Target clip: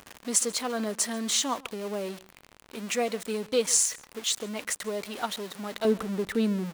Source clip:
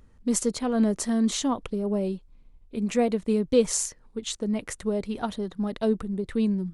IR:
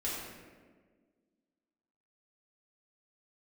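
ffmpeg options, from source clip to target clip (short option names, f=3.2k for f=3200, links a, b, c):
-filter_complex "[0:a]aeval=exprs='val(0)+0.5*0.0168*sgn(val(0))':c=same,asetnsamples=n=441:p=0,asendcmd='5.85 highpass f 400',highpass=f=1.2k:p=1,asplit=2[a][b];[b]adelay=139.9,volume=-22dB,highshelf=f=4k:g=-3.15[c];[a][c]amix=inputs=2:normalize=0,volume=3.5dB"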